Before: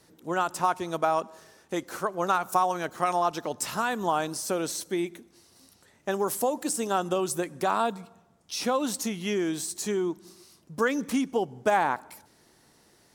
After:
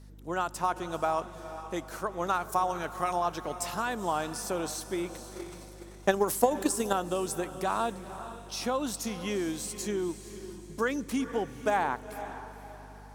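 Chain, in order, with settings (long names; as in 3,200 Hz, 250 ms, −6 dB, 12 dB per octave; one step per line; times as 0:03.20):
feedback delay with all-pass diffusion 480 ms, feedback 42%, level −12 dB
0:05.14–0:06.93: transient designer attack +11 dB, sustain +7 dB
mains hum 50 Hz, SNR 18 dB
level −4 dB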